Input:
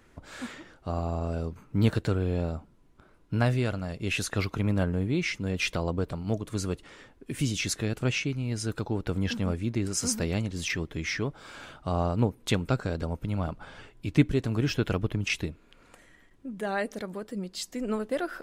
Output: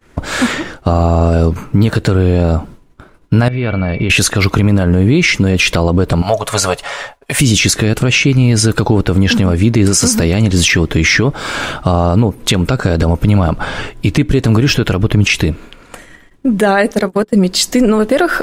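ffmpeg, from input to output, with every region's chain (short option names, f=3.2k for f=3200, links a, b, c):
-filter_complex "[0:a]asettb=1/sr,asplit=3[a][b][c];[a]atrim=end=3.484[d];[b]atrim=start=3.48:end=4.1,asetpts=PTS-STARTPTS,afade=t=in:d=0.004:c=qsin,afade=t=out:st=0.616:d=0.004:c=qsin,acompressor=threshold=-36dB:ratio=16:attack=3.2:release=140:knee=1:detection=peak,aeval=exprs='val(0)+0.002*sin(2*PI*2300*n/s)':c=same,lowpass=f=3.5k:w=0.5412,lowpass=f=3.5k:w=1.3066[e];[c]atrim=start=4.096[f];[d][e]acrossfade=d=0.004:c1=hsin:c2=qsin[g];[g][f]acrossfade=d=0.004:c1=qsin:c2=hsin,asettb=1/sr,asplit=3[h][i][j];[h]atrim=end=6.224[k];[i]atrim=start=6.22:end=7.4,asetpts=PTS-STARTPTS,afade=t=in:d=0.004:c=qsin,afade=t=out:st=1.176:d=0.004:c=qsin,lowshelf=f=460:t=q:w=3:g=-12,aecho=1:1:7.1:0.36,atrim=end_sample=52038[l];[j]atrim=start=7.396[m];[k][l]acrossfade=d=0.004:c1=hsin:c2=qsin[n];[n][m]acrossfade=d=0.004:c1=qsin:c2=hsin,asettb=1/sr,asplit=3[o][p][q];[o]atrim=end=16.914[r];[p]atrim=start=16.91:end=17.33,asetpts=PTS-STARTPTS,afade=t=in:d=0.004:c=qsin,afade=t=out:st=0.416:d=0.004:c=qsin,bandreject=f=60:t=h:w=6,bandreject=f=120:t=h:w=6,bandreject=f=180:t=h:w=6,bandreject=f=240:t=h:w=6,bandreject=f=300:t=h:w=6,bandreject=f=360:t=h:w=6,bandreject=f=420:t=h:w=6,agate=range=-29dB:threshold=-38dB:ratio=16:release=100:detection=peak,acompressor=mode=upward:threshold=-42dB:ratio=2.5:attack=3.2:release=140:knee=2.83:detection=peak[s];[q]atrim=start=17.326[t];[r][s]acrossfade=d=0.004:c1=hsin:c2=qsin[u];[u][t]acrossfade=d=0.004:c1=qsin:c2=hsin,agate=range=-33dB:threshold=-49dB:ratio=3:detection=peak,acompressor=threshold=-29dB:ratio=4,alimiter=level_in=26.5dB:limit=-1dB:release=50:level=0:latency=1,volume=-1dB"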